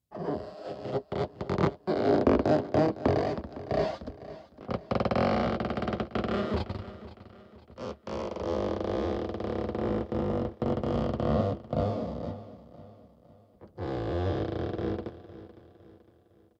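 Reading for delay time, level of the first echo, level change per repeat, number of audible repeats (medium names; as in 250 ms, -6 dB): 508 ms, -16.0 dB, -7.5 dB, 3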